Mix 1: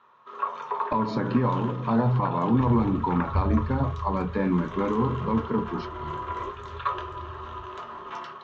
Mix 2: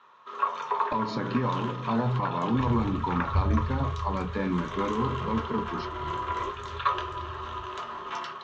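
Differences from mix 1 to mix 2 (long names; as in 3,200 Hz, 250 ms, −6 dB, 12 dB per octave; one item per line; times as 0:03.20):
speech −4.5 dB
master: add high-shelf EQ 2,100 Hz +8.5 dB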